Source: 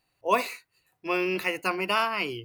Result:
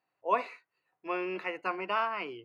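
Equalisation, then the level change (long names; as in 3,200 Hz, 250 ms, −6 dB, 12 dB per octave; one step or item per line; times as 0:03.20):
Bessel high-pass filter 170 Hz
low-pass filter 1,300 Hz 12 dB per octave
spectral tilt +3 dB per octave
−2.0 dB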